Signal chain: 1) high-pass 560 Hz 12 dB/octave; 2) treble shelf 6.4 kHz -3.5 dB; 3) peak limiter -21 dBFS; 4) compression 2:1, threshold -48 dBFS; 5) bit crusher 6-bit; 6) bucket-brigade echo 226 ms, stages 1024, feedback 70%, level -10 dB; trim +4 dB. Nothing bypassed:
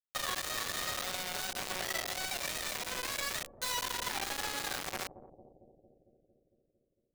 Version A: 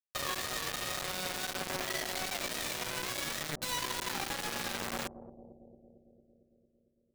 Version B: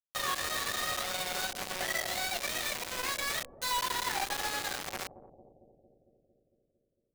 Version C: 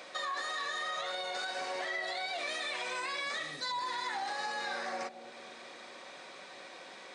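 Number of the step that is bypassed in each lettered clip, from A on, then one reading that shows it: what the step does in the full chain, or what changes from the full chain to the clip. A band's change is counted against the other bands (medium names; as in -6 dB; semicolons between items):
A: 1, 250 Hz band +5.0 dB; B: 3, mean gain reduction 2.0 dB; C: 5, crest factor change -2.0 dB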